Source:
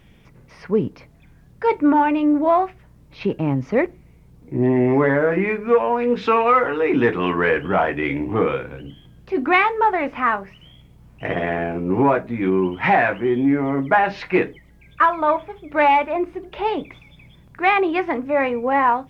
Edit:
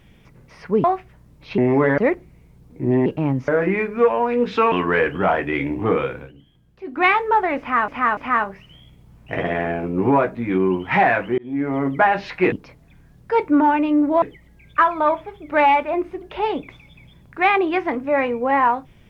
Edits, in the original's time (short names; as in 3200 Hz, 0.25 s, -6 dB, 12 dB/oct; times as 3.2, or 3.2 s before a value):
0.84–2.54 move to 14.44
3.28–3.7 swap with 4.78–5.18
6.42–7.22 cut
8.69–9.56 dip -11 dB, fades 0.13 s
10.09–10.38 loop, 3 plays
13.3–13.69 fade in